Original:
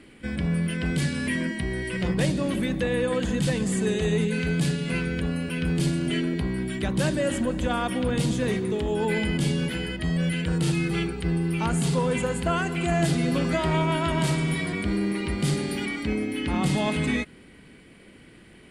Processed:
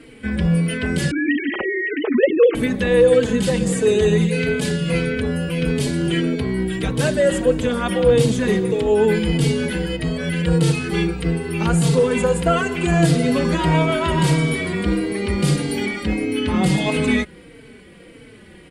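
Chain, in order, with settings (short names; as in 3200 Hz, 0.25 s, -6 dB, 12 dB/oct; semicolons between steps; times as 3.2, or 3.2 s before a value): 1.11–2.55 sine-wave speech; bell 470 Hz +9.5 dB 0.25 oct; endless flanger 3.9 ms -1.6 Hz; gain +8.5 dB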